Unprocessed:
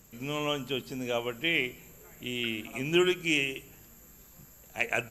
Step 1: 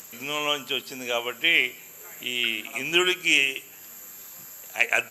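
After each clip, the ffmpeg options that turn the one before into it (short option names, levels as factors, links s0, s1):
-filter_complex "[0:a]highpass=f=1100:p=1,asplit=2[s0][s1];[s1]acompressor=mode=upward:threshold=0.01:ratio=2.5,volume=0.891[s2];[s0][s2]amix=inputs=2:normalize=0,volume=1.5"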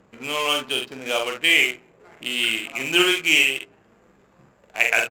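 -af "aecho=1:1:45|69:0.596|0.299,adynamicsmooth=sensitivity=8:basefreq=630,volume=1.26"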